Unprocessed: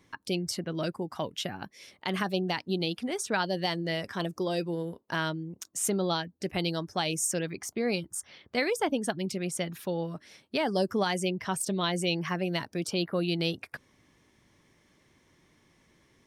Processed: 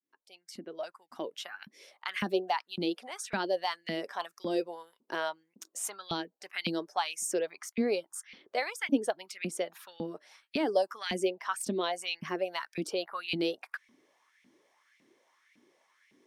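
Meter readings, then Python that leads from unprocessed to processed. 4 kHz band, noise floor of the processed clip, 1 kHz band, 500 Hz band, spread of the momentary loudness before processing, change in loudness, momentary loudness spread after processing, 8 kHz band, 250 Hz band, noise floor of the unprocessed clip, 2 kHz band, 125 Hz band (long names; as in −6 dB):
−4.5 dB, −81 dBFS, −1.5 dB, −1.5 dB, 8 LU, −3.0 dB, 13 LU, −5.5 dB, −4.0 dB, −67 dBFS, −3.0 dB, −13.0 dB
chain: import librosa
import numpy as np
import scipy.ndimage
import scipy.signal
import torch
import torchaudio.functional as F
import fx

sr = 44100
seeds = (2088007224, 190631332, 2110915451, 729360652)

y = fx.fade_in_head(x, sr, length_s=1.68)
y = fx.filter_lfo_highpass(y, sr, shape='saw_up', hz=1.8, low_hz=210.0, high_hz=2500.0, q=4.0)
y = y * librosa.db_to_amplitude(-5.5)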